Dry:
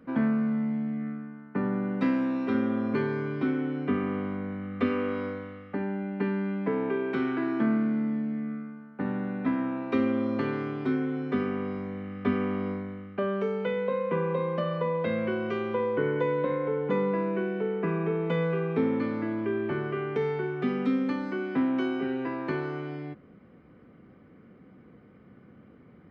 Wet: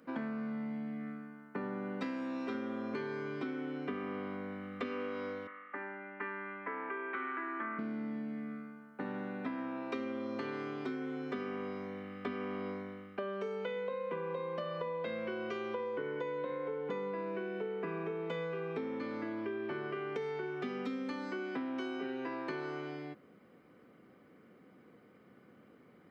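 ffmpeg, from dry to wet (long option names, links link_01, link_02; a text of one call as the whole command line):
ffmpeg -i in.wav -filter_complex "[0:a]asettb=1/sr,asplit=3[link_01][link_02][link_03];[link_01]atrim=end=5.474[link_04];[link_02]atrim=start=5.47:end=7.79,asetpts=PTS-STARTPTS,afade=type=in:duration=0.004:curve=qsin,afade=type=out:start_time=2.316:duration=0.004:curve=qsin,highpass=440,equalizer=frequency=460:width_type=q:width=4:gain=-9,equalizer=frequency=710:width_type=q:width=4:gain=-8,equalizer=frequency=1200:width_type=q:width=4:gain=7,equalizer=frequency=1900:width_type=q:width=4:gain=6,lowpass=frequency=2400:width=0.5412,lowpass=frequency=2400:width=1.3066[link_05];[link_03]atrim=start=7.786[link_06];[link_04][link_05]acrossfade=duration=0.004:curve1=hsin:curve2=qsin[link_07];[link_07][link_06]acrossfade=duration=0.004:curve1=qsin:curve2=hsin,highpass=93,bass=frequency=250:gain=-9,treble=frequency=4000:gain=10,acompressor=threshold=-32dB:ratio=6,volume=-3dB" out.wav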